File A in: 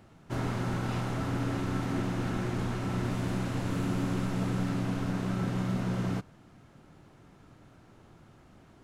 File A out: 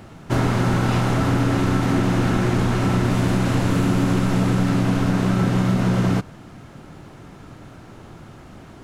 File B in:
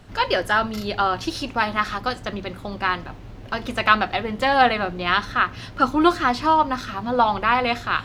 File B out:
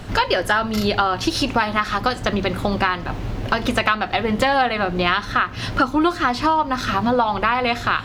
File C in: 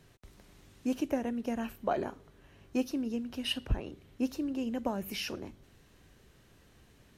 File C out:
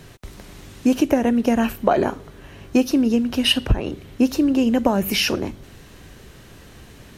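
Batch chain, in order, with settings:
downward compressor 6 to 1, threshold −29 dBFS
loudness normalisation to −20 LKFS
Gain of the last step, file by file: +14.5, +13.0, +17.0 decibels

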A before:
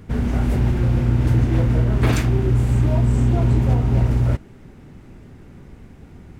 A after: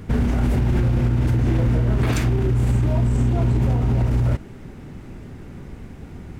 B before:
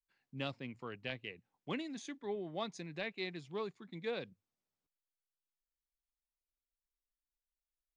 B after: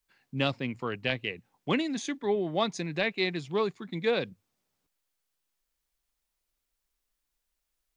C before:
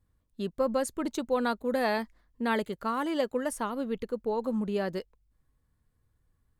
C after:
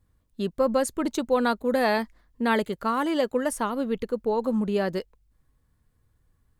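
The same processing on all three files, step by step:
brickwall limiter −17 dBFS
normalise the peak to −12 dBFS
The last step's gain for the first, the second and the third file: +5.0, +12.0, +5.0 decibels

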